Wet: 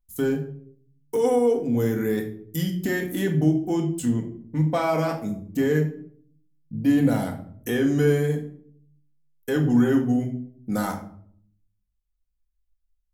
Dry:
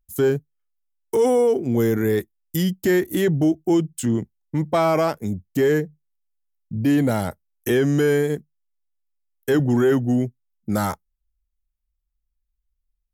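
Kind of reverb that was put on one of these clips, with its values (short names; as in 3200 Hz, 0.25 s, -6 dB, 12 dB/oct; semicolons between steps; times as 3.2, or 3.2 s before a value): shoebox room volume 770 m³, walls furnished, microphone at 1.9 m; gain -6 dB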